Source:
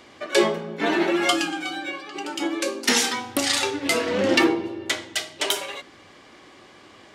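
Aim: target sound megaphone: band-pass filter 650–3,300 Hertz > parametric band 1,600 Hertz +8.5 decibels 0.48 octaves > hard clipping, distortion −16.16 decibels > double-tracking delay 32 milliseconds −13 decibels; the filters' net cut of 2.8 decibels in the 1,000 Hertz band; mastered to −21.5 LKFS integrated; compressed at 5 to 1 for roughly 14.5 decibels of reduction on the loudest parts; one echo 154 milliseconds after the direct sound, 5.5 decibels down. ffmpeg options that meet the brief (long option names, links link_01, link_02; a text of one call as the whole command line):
ffmpeg -i in.wav -filter_complex "[0:a]equalizer=frequency=1000:width_type=o:gain=-4.5,acompressor=threshold=-31dB:ratio=5,highpass=650,lowpass=3300,equalizer=frequency=1600:width_type=o:width=0.48:gain=8.5,aecho=1:1:154:0.531,asoftclip=type=hard:threshold=-28dB,asplit=2[link_01][link_02];[link_02]adelay=32,volume=-13dB[link_03];[link_01][link_03]amix=inputs=2:normalize=0,volume=13dB" out.wav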